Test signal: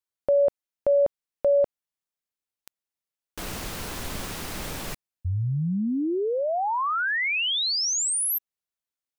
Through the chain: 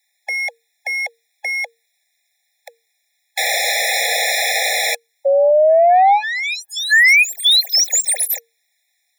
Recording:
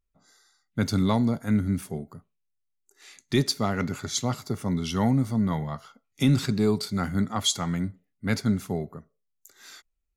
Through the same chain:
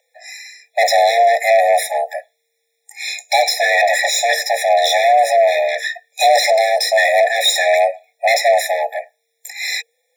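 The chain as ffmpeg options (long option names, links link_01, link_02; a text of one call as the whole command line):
ffmpeg -i in.wav -filter_complex "[0:a]asplit=2[link_01][link_02];[link_02]highpass=frequency=720:poles=1,volume=31dB,asoftclip=type=tanh:threshold=-11dB[link_03];[link_01][link_03]amix=inputs=2:normalize=0,lowpass=frequency=4300:poles=1,volume=-6dB,afreqshift=460,afftfilt=real='re*eq(mod(floor(b*sr/1024/840),2),0)':imag='im*eq(mod(floor(b*sr/1024/840),2),0)':win_size=1024:overlap=0.75,volume=7dB" out.wav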